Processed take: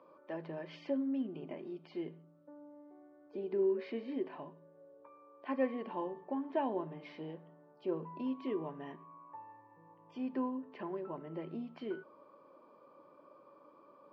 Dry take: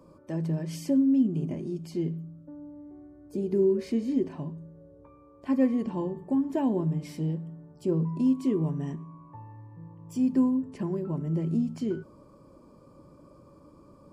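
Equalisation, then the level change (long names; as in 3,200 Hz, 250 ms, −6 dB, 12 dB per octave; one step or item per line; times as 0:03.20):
high-pass filter 590 Hz 12 dB per octave
low-pass filter 3,700 Hz 24 dB per octave
high-frequency loss of the air 150 metres
+1.0 dB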